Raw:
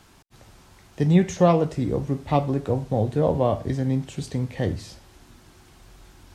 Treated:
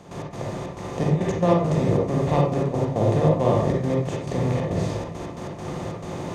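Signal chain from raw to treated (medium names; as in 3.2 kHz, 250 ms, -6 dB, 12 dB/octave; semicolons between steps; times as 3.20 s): spectral levelling over time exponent 0.4; trance gate ".x.xxx.xxx.x" 137 bpm -12 dB; reverberation RT60 0.40 s, pre-delay 38 ms, DRR -1 dB; trim -7 dB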